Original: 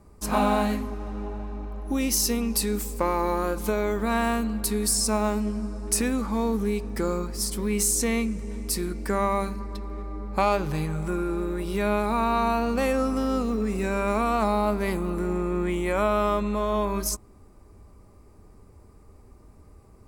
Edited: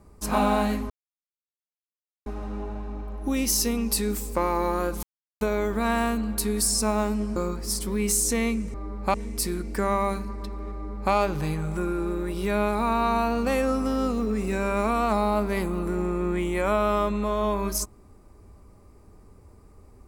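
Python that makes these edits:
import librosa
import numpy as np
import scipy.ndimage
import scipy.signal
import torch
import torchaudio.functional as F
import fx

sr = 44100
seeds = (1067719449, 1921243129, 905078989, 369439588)

y = fx.edit(x, sr, fx.insert_silence(at_s=0.9, length_s=1.36),
    fx.insert_silence(at_s=3.67, length_s=0.38),
    fx.cut(start_s=5.62, length_s=1.45),
    fx.duplicate(start_s=10.04, length_s=0.4, to_s=8.45), tone=tone)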